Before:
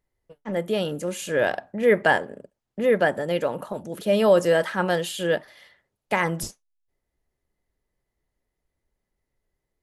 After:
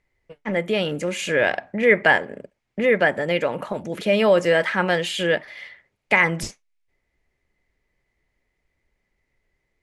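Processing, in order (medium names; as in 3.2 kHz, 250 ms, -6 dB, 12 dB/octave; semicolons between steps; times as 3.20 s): in parallel at +1 dB: compression, threshold -29 dBFS, peak gain reduction 15.5 dB; on the sum: low-pass 7.4 kHz 12 dB/octave; peaking EQ 2.2 kHz +11.5 dB 0.59 oct; trim -1.5 dB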